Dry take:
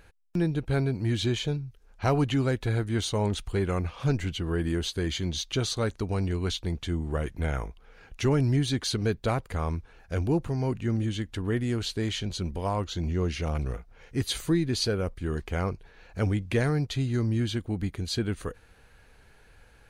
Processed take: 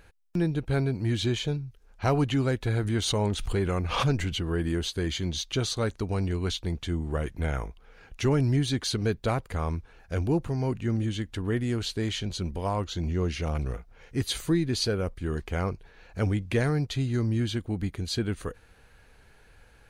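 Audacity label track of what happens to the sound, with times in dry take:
2.660000	4.460000	swell ahead of each attack at most 49 dB/s

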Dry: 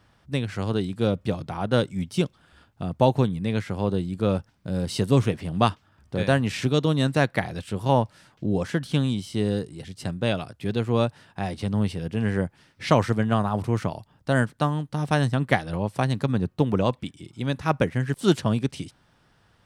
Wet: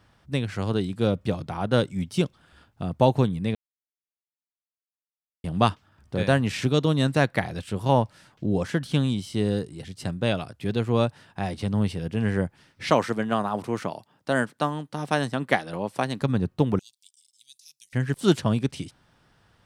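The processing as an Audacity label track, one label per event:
3.550000	5.440000	mute
12.900000	16.220000	high-pass 220 Hz
16.790000	17.930000	inverse Chebyshev high-pass stop band from 1.5 kHz, stop band 60 dB

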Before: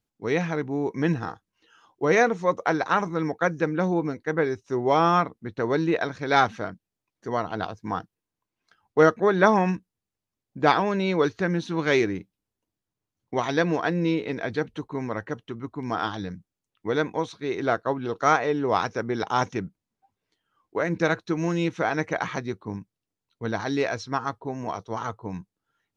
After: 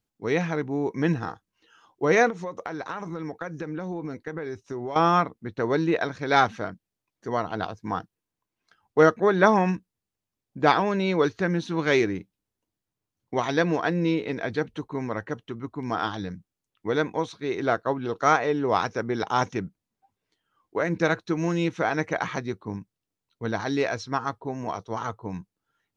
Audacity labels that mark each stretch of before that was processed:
2.300000	4.960000	compression 16:1, threshold -28 dBFS

